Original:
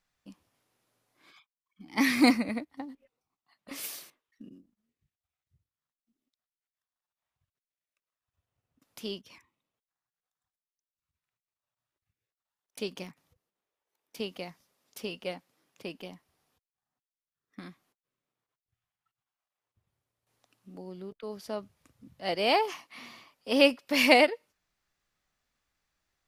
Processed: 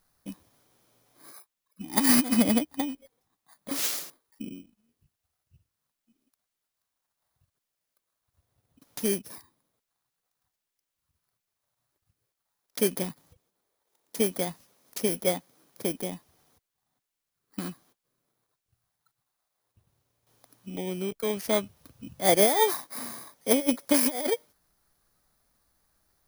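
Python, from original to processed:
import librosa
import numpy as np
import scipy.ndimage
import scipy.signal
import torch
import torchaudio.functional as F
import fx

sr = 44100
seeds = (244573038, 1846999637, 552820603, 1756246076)

y = fx.bit_reversed(x, sr, seeds[0], block=16)
y = fx.over_compress(y, sr, threshold_db=-27.0, ratio=-0.5)
y = y * 10.0 ** (6.5 / 20.0)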